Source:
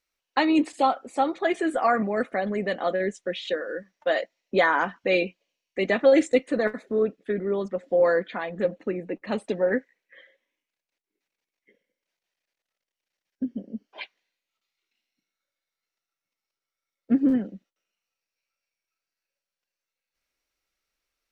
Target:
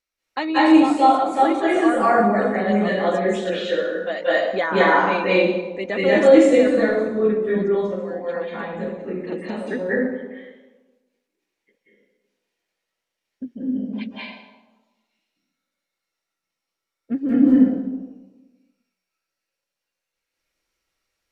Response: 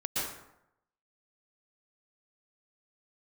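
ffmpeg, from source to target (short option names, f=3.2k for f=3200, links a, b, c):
-filter_complex "[0:a]asettb=1/sr,asplit=3[a][b][c];[a]atrim=end=7.604[d];[b]atrim=start=7.6:end=9.71,asetpts=PTS-STARTPTS,afade=t=in:d=0.004:c=qsin,afade=t=out:st=2.106:d=0.004:c=qsin,acompressor=threshold=-31dB:ratio=6[e];[c]atrim=start=9.706[f];[d][e]acrossfade=d=0.004:c1=hsin:c2=qsin[g];[g][f]acrossfade=d=0.004:c1=qsin:c2=hsin[h];[1:a]atrim=start_sample=2205,asetrate=27783,aresample=44100[i];[h][i]afir=irnorm=-1:irlink=0,volume=-4dB"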